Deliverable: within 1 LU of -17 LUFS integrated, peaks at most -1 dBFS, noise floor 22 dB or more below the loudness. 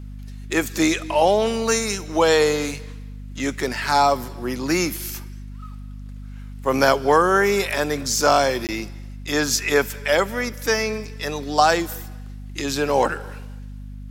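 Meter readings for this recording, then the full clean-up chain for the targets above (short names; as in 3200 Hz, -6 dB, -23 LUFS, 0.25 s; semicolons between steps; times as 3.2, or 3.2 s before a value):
dropouts 1; longest dropout 18 ms; hum 50 Hz; harmonics up to 250 Hz; hum level -33 dBFS; loudness -21.0 LUFS; peak -2.5 dBFS; loudness target -17.0 LUFS
-> interpolate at 8.67, 18 ms; de-hum 50 Hz, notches 5; gain +4 dB; limiter -1 dBFS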